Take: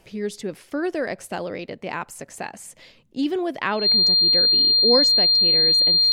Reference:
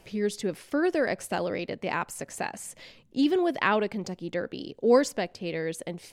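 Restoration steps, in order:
notch filter 4,200 Hz, Q 30

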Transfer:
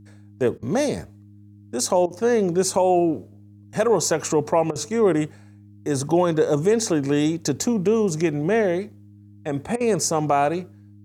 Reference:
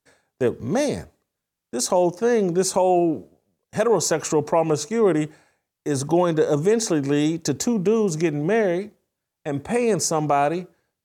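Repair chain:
hum removal 102.5 Hz, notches 3
repair the gap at 0:00.58/0:02.06/0:04.71/0:09.76, 44 ms

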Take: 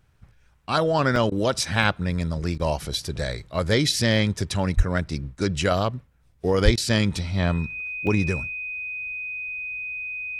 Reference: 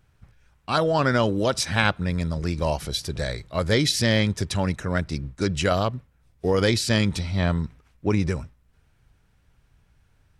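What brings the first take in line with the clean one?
notch filter 2,500 Hz, Q 30
high-pass at the plosives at 0:04.76/0:06.64
repair the gap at 0:01.16/0:01.83/0:02.55/0:02.94/0:08.07, 1.4 ms
repair the gap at 0:01.30/0:02.58/0:06.76, 14 ms

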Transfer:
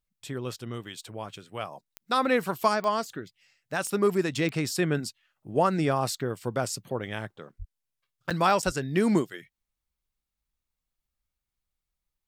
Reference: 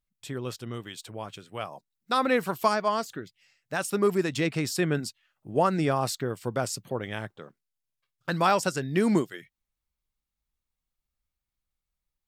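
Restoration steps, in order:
click removal
0:07.58–0:07.70: high-pass filter 140 Hz 24 dB per octave
0:08.65–0:08.77: high-pass filter 140 Hz 24 dB per octave
repair the gap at 0:08.30/0:08.62, 6.9 ms

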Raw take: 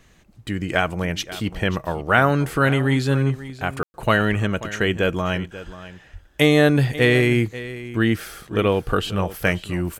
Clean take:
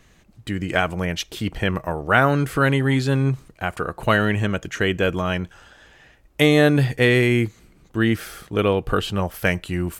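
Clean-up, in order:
0:04.29–0:04.41: high-pass filter 140 Hz 24 dB per octave
0:05.65–0:05.77: high-pass filter 140 Hz 24 dB per octave
0:06.12–0:06.24: high-pass filter 140 Hz 24 dB per octave
ambience match 0:03.83–0:03.94
echo removal 536 ms −15.5 dB

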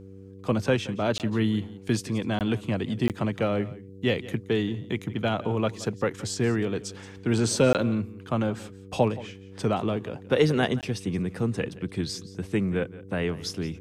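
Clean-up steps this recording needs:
hum removal 96.6 Hz, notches 5
repair the gap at 0:01.18/0:02.39/0:03.08/0:07.73/0:10.81, 18 ms
echo removal 174 ms −18 dB

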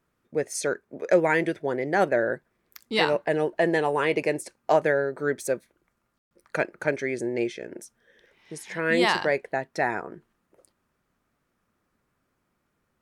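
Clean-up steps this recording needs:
ambience match 0:06.18–0:06.31

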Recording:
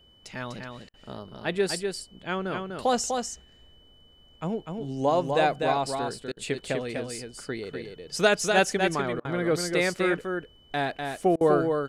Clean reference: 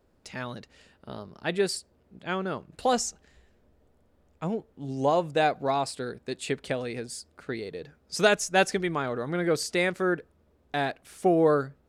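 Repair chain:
notch filter 3,000 Hz, Q 30
repair the gap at 0:00.89/0:06.32/0:09.20/0:11.36, 47 ms
downward expander −47 dBFS, range −21 dB
echo removal 248 ms −5 dB

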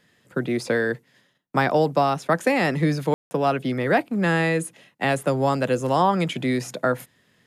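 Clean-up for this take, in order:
ambience match 0:03.14–0:03.31

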